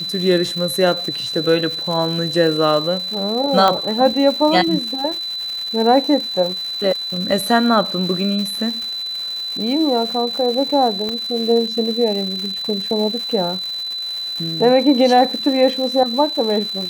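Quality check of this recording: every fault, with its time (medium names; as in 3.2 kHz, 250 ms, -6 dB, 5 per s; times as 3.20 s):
crackle 370 per s -26 dBFS
whine 4 kHz -23 dBFS
3.68 s: pop -4 dBFS
11.09 s: pop -11 dBFS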